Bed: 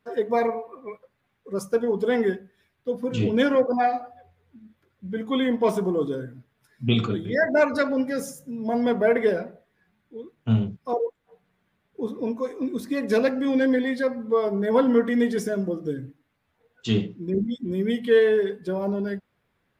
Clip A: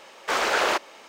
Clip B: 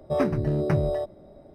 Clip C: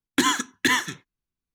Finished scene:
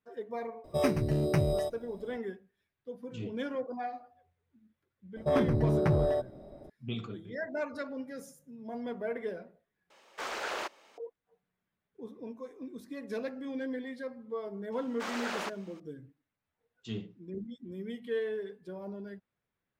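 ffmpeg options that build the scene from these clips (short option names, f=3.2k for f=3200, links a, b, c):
-filter_complex "[2:a]asplit=2[a][b];[1:a]asplit=2[c][d];[0:a]volume=-15.5dB[e];[a]aexciter=amount=1.8:drive=8.1:freq=2.2k[f];[b]asoftclip=type=tanh:threshold=-18.5dB[g];[e]asplit=2[h][i];[h]atrim=end=9.904[j];[c]atrim=end=1.08,asetpts=PTS-STARTPTS,volume=-13.5dB[k];[i]atrim=start=10.976[l];[f]atrim=end=1.54,asetpts=PTS-STARTPTS,volume=-4dB,afade=t=in:d=0.004:c=hsin,afade=t=out:st=1.536:d=0.004:c=hsin,adelay=640[m];[g]atrim=end=1.54,asetpts=PTS-STARTPTS,volume=-0.5dB,afade=t=in:d=0.004:c=hsin,afade=t=out:st=1.536:d=0.004:c=hsin,adelay=5160[n];[d]atrim=end=1.08,asetpts=PTS-STARTPTS,volume=-14dB,afade=t=in:d=0.004:c=hsin,afade=t=out:st=1.076:d=0.004:c=hsin,adelay=14720[o];[j][k]acrossfade=d=0.004:c1=hsin:c2=hsin[p];[p][l]acrossfade=d=0.004:c1=hsin:c2=hsin[q];[q][m][n][o]amix=inputs=4:normalize=0"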